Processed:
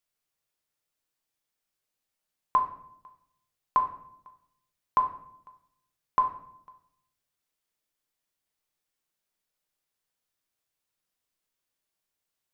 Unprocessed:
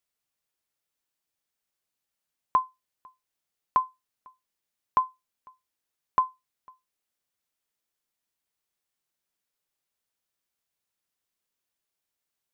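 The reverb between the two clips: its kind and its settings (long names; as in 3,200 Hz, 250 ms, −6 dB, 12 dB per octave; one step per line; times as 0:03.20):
rectangular room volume 140 cubic metres, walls mixed, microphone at 0.54 metres
level −1 dB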